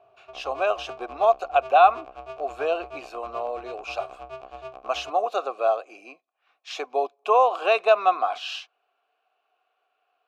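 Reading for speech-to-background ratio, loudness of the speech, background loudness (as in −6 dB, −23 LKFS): 17.0 dB, −24.0 LKFS, −41.0 LKFS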